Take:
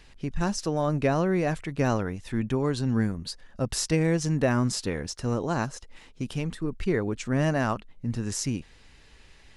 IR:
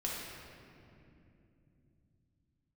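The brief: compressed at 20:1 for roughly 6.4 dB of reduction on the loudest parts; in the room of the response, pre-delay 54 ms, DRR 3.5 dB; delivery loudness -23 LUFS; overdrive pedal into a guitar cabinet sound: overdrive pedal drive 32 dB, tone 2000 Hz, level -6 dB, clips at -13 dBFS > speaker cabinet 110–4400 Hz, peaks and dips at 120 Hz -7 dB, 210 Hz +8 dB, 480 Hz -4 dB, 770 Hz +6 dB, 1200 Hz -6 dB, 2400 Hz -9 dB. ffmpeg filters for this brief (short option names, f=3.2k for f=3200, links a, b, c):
-filter_complex "[0:a]acompressor=threshold=-25dB:ratio=20,asplit=2[a][b];[1:a]atrim=start_sample=2205,adelay=54[c];[b][c]afir=irnorm=-1:irlink=0,volume=-7dB[d];[a][d]amix=inputs=2:normalize=0,asplit=2[e][f];[f]highpass=f=720:p=1,volume=32dB,asoftclip=type=tanh:threshold=-13dB[g];[e][g]amix=inputs=2:normalize=0,lowpass=f=2k:p=1,volume=-6dB,highpass=110,equalizer=f=120:t=q:w=4:g=-7,equalizer=f=210:t=q:w=4:g=8,equalizer=f=480:t=q:w=4:g=-4,equalizer=f=770:t=q:w=4:g=6,equalizer=f=1.2k:t=q:w=4:g=-6,equalizer=f=2.4k:t=q:w=4:g=-9,lowpass=f=4.4k:w=0.5412,lowpass=f=4.4k:w=1.3066,volume=-1.5dB"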